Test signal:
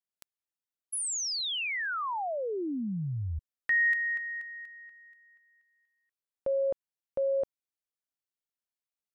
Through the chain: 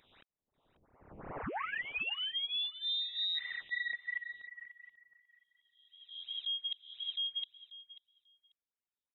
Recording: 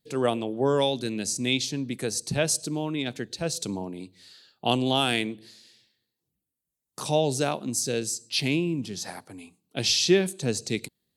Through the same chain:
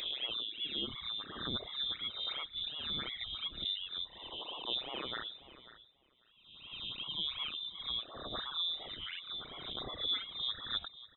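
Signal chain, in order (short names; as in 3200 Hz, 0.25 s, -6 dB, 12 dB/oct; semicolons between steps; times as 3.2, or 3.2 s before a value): spectral swells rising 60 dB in 1.07 s; reverse; compressor 6:1, threshold -32 dBFS; reverse; phaser stages 12, 2.8 Hz, lowest notch 210–2300 Hz; reverb removal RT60 1.4 s; on a send: feedback echo 0.54 s, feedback 15%, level -16 dB; on the sum: inverted band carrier 3800 Hz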